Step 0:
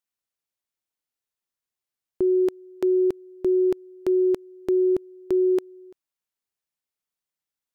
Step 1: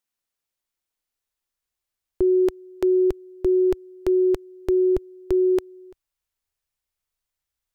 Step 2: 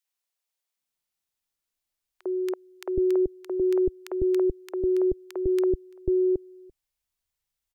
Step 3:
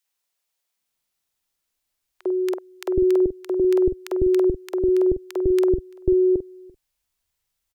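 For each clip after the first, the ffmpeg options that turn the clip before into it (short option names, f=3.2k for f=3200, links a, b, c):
-af "asubboost=boost=10.5:cutoff=65,volume=3.5dB"
-filter_complex "[0:a]acrossover=split=440|1400[a][b][c];[b]adelay=50[d];[a]adelay=770[e];[e][d][c]amix=inputs=3:normalize=0"
-filter_complex "[0:a]asplit=2[a][b];[b]adelay=47,volume=-10dB[c];[a][c]amix=inputs=2:normalize=0,volume=6dB"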